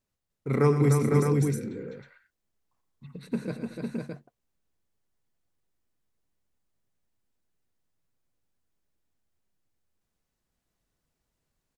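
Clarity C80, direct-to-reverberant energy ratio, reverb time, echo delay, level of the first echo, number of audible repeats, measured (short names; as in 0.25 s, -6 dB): none, none, none, 87 ms, -16.5 dB, 6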